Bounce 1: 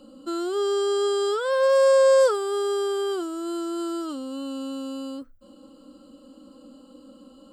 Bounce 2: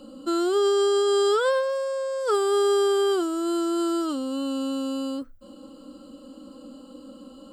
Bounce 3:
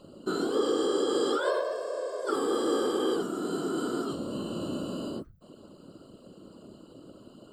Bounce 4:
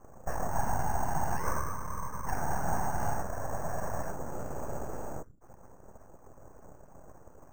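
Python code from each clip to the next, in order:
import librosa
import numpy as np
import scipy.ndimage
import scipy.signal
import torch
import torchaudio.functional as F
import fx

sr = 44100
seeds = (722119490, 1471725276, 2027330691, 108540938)

y1 = fx.over_compress(x, sr, threshold_db=-24.0, ratio=-1.0)
y1 = F.gain(torch.from_numpy(y1), 2.0).numpy()
y2 = fx.whisperise(y1, sr, seeds[0])
y2 = F.gain(torch.from_numpy(y2), -6.0).numpy()
y3 = np.abs(y2)
y3 = scipy.signal.sosfilt(scipy.signal.cheby2(4, 80, 8400.0, 'lowpass', fs=sr, output='sos'), y3)
y3 = np.repeat(scipy.signal.resample_poly(y3, 1, 6), 6)[:len(y3)]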